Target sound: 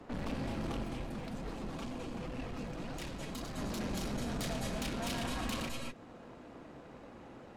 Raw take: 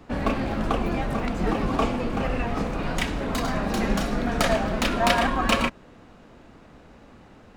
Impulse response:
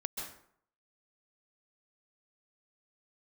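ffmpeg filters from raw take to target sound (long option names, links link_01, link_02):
-filter_complex "[0:a]highpass=frequency=53:poles=1,equalizer=frequency=490:width_type=o:width=2.7:gain=5.5,acrossover=split=210|3000[link_01][link_02][link_03];[link_02]acompressor=threshold=-40dB:ratio=2.5[link_04];[link_01][link_04][link_03]amix=inputs=3:normalize=0,aeval=exprs='(tanh(44.7*val(0)+0.75)-tanh(0.75))/44.7':channel_layout=same,asplit=3[link_05][link_06][link_07];[link_05]afade=type=out:start_time=0.83:duration=0.02[link_08];[link_06]flanger=delay=1.6:depth=5.2:regen=44:speed=2:shape=triangular,afade=type=in:start_time=0.83:duration=0.02,afade=type=out:start_time=3.57:duration=0.02[link_09];[link_07]afade=type=in:start_time=3.57:duration=0.02[link_10];[link_08][link_09][link_10]amix=inputs=3:normalize=0[link_11];[1:a]atrim=start_sample=2205,afade=type=out:start_time=0.19:duration=0.01,atrim=end_sample=8820,asetrate=27342,aresample=44100[link_12];[link_11][link_12]afir=irnorm=-1:irlink=0,volume=-3dB"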